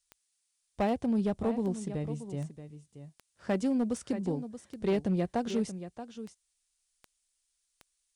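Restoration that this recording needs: clip repair -22.5 dBFS; de-click; expander -71 dBFS, range -21 dB; inverse comb 629 ms -12 dB

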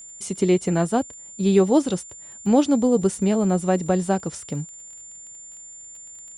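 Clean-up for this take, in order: de-click; band-stop 7.2 kHz, Q 30

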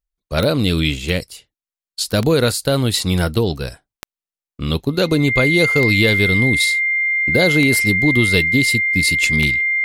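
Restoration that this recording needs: de-click; band-stop 2.1 kHz, Q 30

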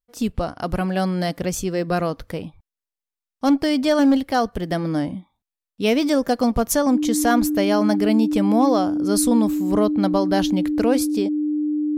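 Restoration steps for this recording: band-stop 300 Hz, Q 30

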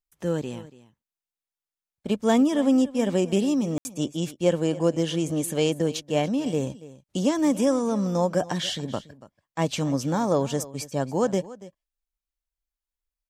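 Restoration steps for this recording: room tone fill 3.78–3.85 s; inverse comb 284 ms -18 dB

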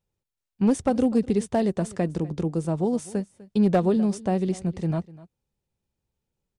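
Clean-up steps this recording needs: clip repair -13.5 dBFS; inverse comb 249 ms -20 dB

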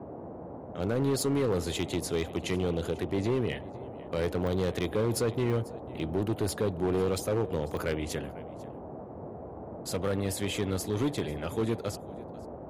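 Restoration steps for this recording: clip repair -22.5 dBFS; de-click; noise print and reduce 30 dB; inverse comb 495 ms -21 dB

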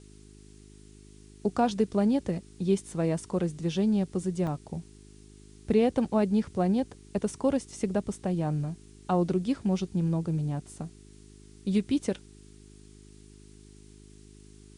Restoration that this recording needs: de-hum 51.5 Hz, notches 8; interpolate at 4.47 s, 2.4 ms; expander -44 dBFS, range -21 dB

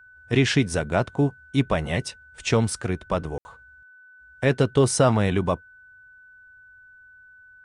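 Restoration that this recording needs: band-stop 1.5 kHz, Q 30; room tone fill 3.38–3.45 s

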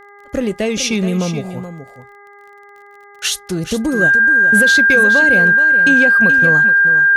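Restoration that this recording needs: de-click; de-hum 405.7 Hz, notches 5; band-stop 1.6 kHz, Q 30; inverse comb 426 ms -11 dB

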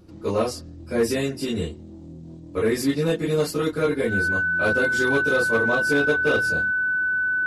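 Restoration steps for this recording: clip repair -13.5 dBFS; band-stop 1.5 kHz, Q 30

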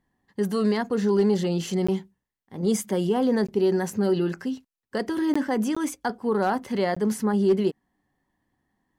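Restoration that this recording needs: clip repair -13.5 dBFS; interpolate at 1.87/3.47/5.34/5.75/6.95 s, 15 ms

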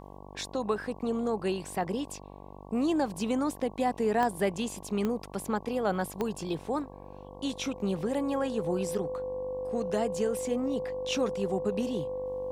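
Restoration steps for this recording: de-click; de-hum 48.7 Hz, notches 23; band-stop 510 Hz, Q 30

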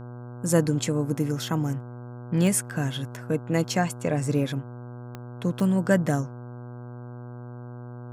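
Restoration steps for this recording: de-click; de-hum 121.8 Hz, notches 13

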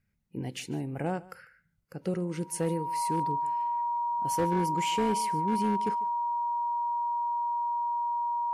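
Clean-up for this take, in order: clip repair -21.5 dBFS; band-stop 950 Hz, Q 30; inverse comb 147 ms -21 dB

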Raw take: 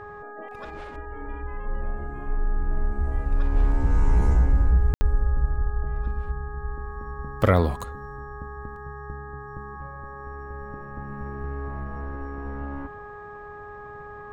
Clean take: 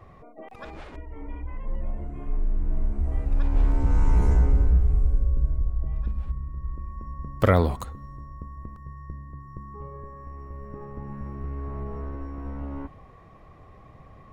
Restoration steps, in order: de-hum 414.8 Hz, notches 4; room tone fill 4.94–5.01 s

